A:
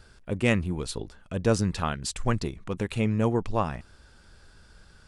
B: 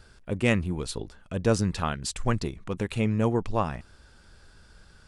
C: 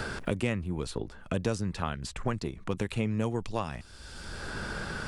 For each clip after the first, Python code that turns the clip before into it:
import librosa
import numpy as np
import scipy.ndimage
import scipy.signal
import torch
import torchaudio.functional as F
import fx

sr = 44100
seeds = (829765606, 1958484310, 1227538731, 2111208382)

y1 = x
y2 = fx.band_squash(y1, sr, depth_pct=100)
y2 = y2 * librosa.db_to_amplitude(-5.0)